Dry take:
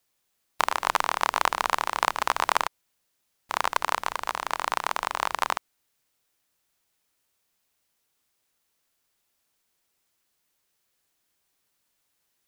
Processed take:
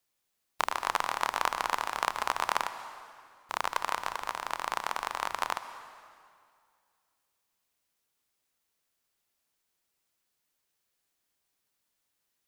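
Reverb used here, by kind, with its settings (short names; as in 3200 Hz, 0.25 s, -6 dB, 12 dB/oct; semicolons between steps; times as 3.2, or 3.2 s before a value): plate-style reverb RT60 2.2 s, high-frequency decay 0.85×, pre-delay 0.11 s, DRR 11.5 dB; gain -5.5 dB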